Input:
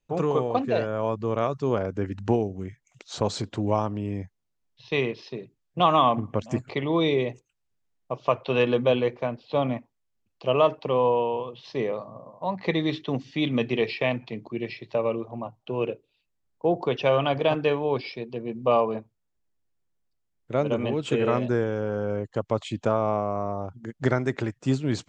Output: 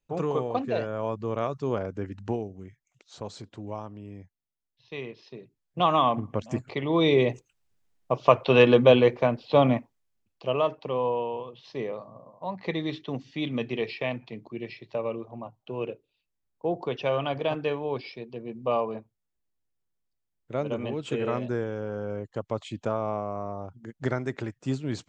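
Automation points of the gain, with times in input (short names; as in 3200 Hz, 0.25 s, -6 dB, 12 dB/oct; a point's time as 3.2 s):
1.78 s -3.5 dB
3.13 s -12 dB
4.96 s -12 dB
5.83 s -2.5 dB
6.79 s -2.5 dB
7.3 s +5 dB
9.74 s +5 dB
10.62 s -5 dB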